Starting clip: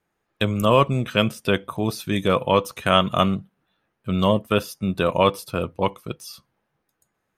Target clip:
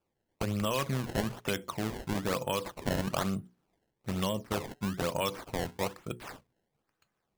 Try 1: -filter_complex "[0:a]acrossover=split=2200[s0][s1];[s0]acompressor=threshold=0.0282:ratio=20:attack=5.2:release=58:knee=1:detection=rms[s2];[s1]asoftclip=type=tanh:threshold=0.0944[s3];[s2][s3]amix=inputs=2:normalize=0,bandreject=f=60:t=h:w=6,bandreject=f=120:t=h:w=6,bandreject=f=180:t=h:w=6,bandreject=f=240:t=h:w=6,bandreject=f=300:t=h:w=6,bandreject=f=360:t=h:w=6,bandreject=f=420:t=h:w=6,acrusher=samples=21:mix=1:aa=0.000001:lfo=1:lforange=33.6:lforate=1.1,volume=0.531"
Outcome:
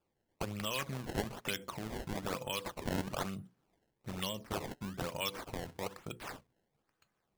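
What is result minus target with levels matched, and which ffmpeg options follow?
compression: peak gain reduction +9.5 dB
-filter_complex "[0:a]acrossover=split=2200[s0][s1];[s0]acompressor=threshold=0.0891:ratio=20:attack=5.2:release=58:knee=1:detection=rms[s2];[s1]asoftclip=type=tanh:threshold=0.0944[s3];[s2][s3]amix=inputs=2:normalize=0,bandreject=f=60:t=h:w=6,bandreject=f=120:t=h:w=6,bandreject=f=180:t=h:w=6,bandreject=f=240:t=h:w=6,bandreject=f=300:t=h:w=6,bandreject=f=360:t=h:w=6,bandreject=f=420:t=h:w=6,acrusher=samples=21:mix=1:aa=0.000001:lfo=1:lforange=33.6:lforate=1.1,volume=0.531"

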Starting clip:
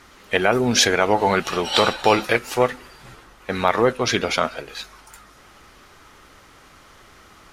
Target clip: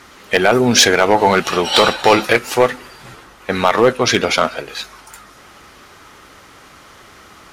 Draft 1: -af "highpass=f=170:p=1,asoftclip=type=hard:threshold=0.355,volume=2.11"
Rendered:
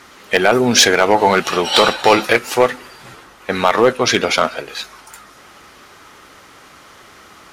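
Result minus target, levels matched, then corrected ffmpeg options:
125 Hz band -2.5 dB
-af "highpass=f=82:p=1,asoftclip=type=hard:threshold=0.355,volume=2.11"

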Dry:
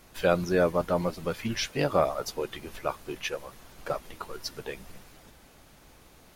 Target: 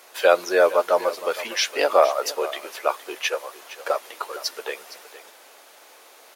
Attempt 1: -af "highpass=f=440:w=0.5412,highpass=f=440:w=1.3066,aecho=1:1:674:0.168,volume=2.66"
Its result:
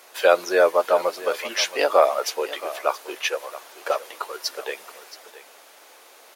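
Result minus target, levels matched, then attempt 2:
echo 211 ms late
-af "highpass=f=440:w=0.5412,highpass=f=440:w=1.3066,aecho=1:1:463:0.168,volume=2.66"

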